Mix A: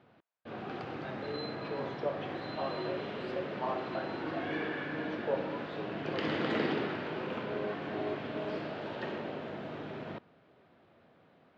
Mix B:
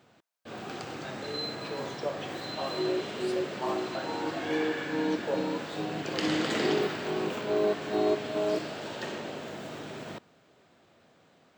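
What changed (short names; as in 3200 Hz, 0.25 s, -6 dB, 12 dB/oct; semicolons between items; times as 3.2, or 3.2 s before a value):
second sound +10.5 dB; master: remove air absorption 320 m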